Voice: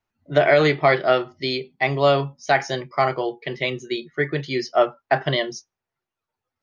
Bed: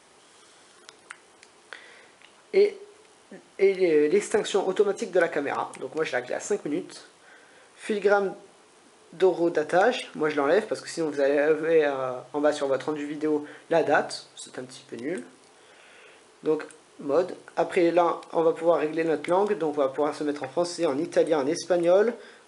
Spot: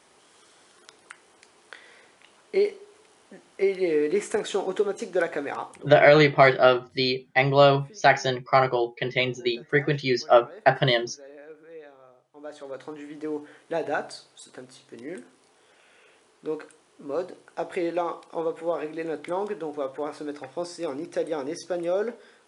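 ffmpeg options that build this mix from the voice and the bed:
-filter_complex "[0:a]adelay=5550,volume=0.5dB[a];[1:a]volume=15dB,afade=t=out:st=5.44:d=0.73:silence=0.0891251,afade=t=in:st=12.32:d=0.94:silence=0.133352[b];[a][b]amix=inputs=2:normalize=0"

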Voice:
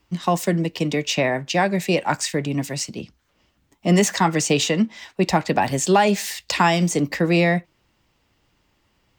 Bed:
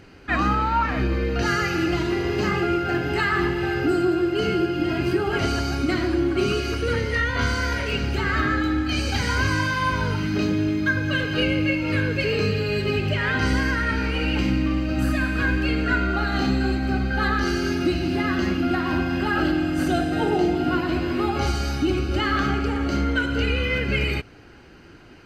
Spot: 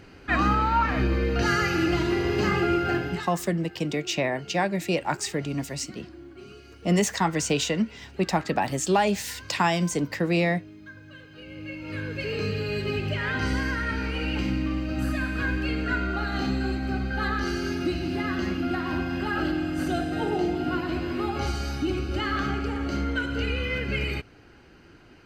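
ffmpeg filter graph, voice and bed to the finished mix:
-filter_complex "[0:a]adelay=3000,volume=-5.5dB[a];[1:a]volume=17dB,afade=t=out:st=2.9:d=0.39:silence=0.0794328,afade=t=in:st=11.44:d=1.17:silence=0.125893[b];[a][b]amix=inputs=2:normalize=0"

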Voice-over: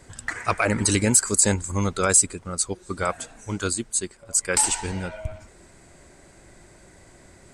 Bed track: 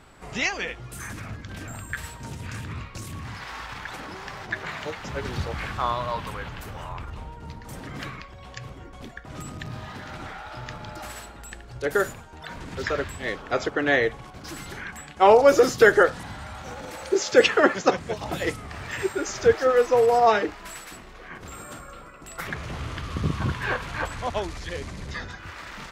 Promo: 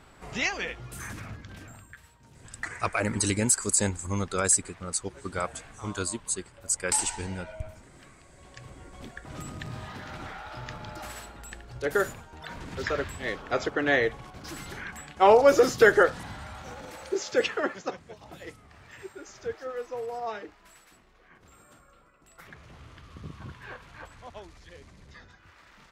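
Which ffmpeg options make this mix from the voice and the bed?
-filter_complex "[0:a]adelay=2350,volume=-5.5dB[a];[1:a]volume=14dB,afade=t=out:st=1.1:d=0.89:silence=0.149624,afade=t=in:st=8.22:d=0.91:silence=0.149624,afade=t=out:st=16.24:d=1.83:silence=0.211349[b];[a][b]amix=inputs=2:normalize=0"

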